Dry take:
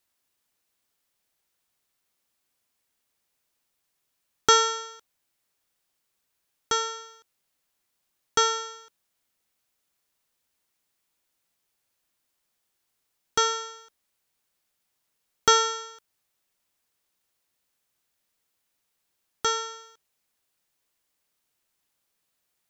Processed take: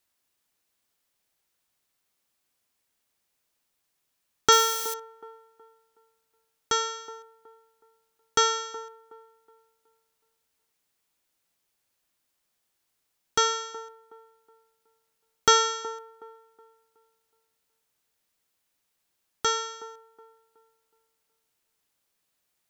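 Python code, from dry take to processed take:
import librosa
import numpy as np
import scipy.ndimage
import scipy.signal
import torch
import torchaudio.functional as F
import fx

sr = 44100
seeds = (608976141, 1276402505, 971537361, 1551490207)

p1 = fx.crossing_spikes(x, sr, level_db=-25.0, at=(4.52, 4.94))
y = p1 + fx.echo_wet_bandpass(p1, sr, ms=370, feedback_pct=33, hz=520.0, wet_db=-14.0, dry=0)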